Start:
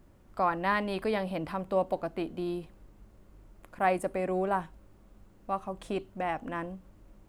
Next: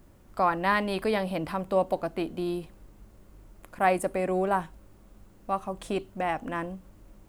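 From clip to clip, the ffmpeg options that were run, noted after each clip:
-af "highshelf=f=5.3k:g=6,volume=3dB"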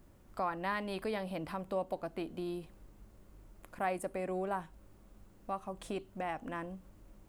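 -af "acompressor=threshold=-36dB:ratio=1.5,volume=-5dB"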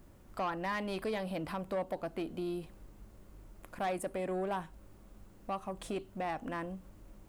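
-af "asoftclip=type=tanh:threshold=-31dB,volume=3dB"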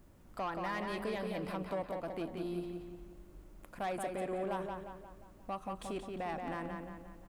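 -filter_complex "[0:a]asplit=2[a][b];[b]adelay=177,lowpass=f=4.4k:p=1,volume=-4dB,asplit=2[c][d];[d]adelay=177,lowpass=f=4.4k:p=1,volume=0.49,asplit=2[e][f];[f]adelay=177,lowpass=f=4.4k:p=1,volume=0.49,asplit=2[g][h];[h]adelay=177,lowpass=f=4.4k:p=1,volume=0.49,asplit=2[i][j];[j]adelay=177,lowpass=f=4.4k:p=1,volume=0.49,asplit=2[k][l];[l]adelay=177,lowpass=f=4.4k:p=1,volume=0.49[m];[a][c][e][g][i][k][m]amix=inputs=7:normalize=0,volume=-3dB"

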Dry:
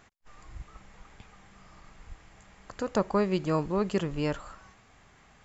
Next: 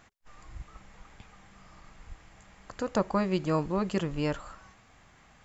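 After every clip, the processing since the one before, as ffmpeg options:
-af "bandreject=f=410:w=12"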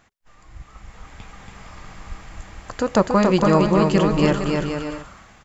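-af "dynaudnorm=f=360:g=5:m=11dB,aecho=1:1:280|462|580.3|657.2|707.2:0.631|0.398|0.251|0.158|0.1"

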